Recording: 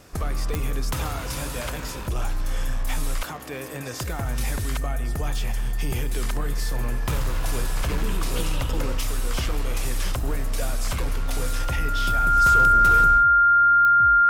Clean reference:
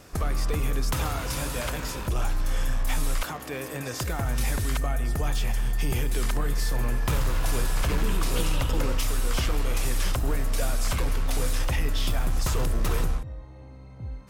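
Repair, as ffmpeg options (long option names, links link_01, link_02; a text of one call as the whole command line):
ffmpeg -i in.wav -af "adeclick=threshold=4,bandreject=frequency=1400:width=30" out.wav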